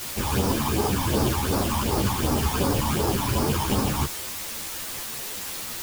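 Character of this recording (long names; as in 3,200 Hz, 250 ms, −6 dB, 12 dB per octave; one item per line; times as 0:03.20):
aliases and images of a low sample rate 2,000 Hz, jitter 0%
phaser sweep stages 12, 2.7 Hz, lowest notch 440–3,000 Hz
a quantiser's noise floor 6 bits, dither triangular
a shimmering, thickened sound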